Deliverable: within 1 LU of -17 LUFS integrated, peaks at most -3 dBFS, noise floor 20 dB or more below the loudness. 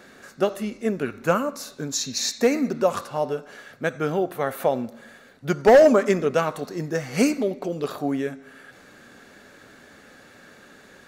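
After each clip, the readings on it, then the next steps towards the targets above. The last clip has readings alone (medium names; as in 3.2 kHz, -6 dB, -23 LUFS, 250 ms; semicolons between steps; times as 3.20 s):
loudness -23.0 LUFS; peak level -8.0 dBFS; loudness target -17.0 LUFS
-> trim +6 dB; peak limiter -3 dBFS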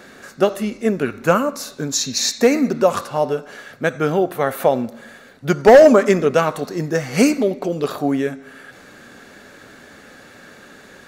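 loudness -17.5 LUFS; peak level -3.0 dBFS; noise floor -45 dBFS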